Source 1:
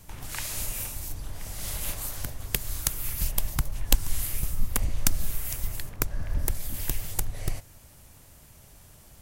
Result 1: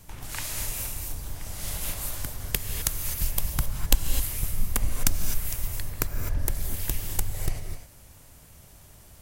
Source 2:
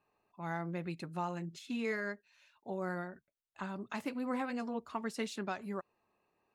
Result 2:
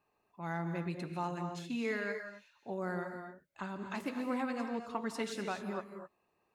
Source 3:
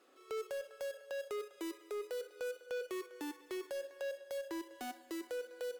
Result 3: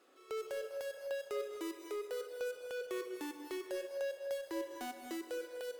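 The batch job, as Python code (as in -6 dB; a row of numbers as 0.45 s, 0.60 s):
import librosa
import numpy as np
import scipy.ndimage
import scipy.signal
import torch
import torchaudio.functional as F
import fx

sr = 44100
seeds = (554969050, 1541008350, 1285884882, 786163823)

y = fx.rev_gated(x, sr, seeds[0], gate_ms=280, shape='rising', drr_db=6.0)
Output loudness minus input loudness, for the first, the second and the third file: +1.0 LU, +1.0 LU, +1.5 LU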